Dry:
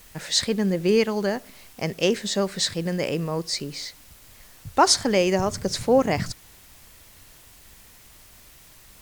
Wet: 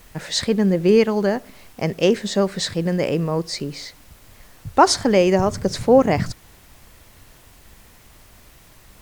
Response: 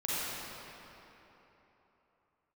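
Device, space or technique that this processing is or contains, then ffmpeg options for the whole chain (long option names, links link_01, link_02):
behind a face mask: -af "highshelf=frequency=2200:gain=-8,volume=5.5dB"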